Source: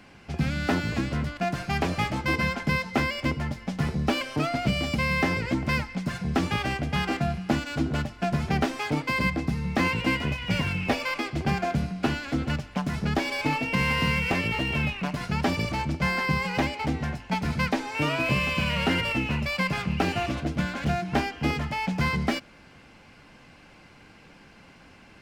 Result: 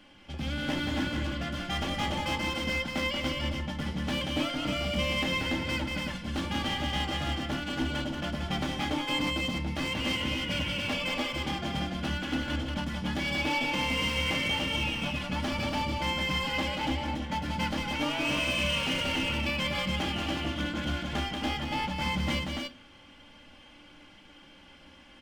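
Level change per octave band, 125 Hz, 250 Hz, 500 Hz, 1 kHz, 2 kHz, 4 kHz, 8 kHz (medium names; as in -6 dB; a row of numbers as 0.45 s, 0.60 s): -7.0 dB, -4.5 dB, -4.5 dB, -4.5 dB, -3.5 dB, +3.0 dB, 0.0 dB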